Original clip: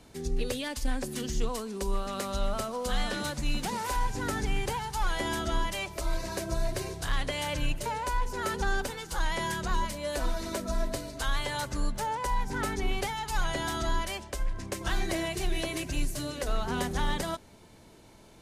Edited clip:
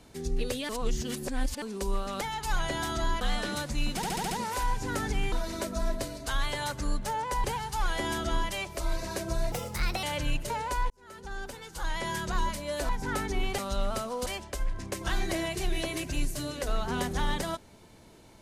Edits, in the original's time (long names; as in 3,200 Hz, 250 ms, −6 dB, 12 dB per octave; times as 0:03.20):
0:00.69–0:01.62: reverse
0:02.21–0:02.89: swap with 0:13.06–0:14.06
0:03.64: stutter 0.07 s, 6 plays
0:06.73–0:07.39: play speed 129%
0:08.26–0:09.65: fade in
0:10.25–0:12.37: move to 0:04.65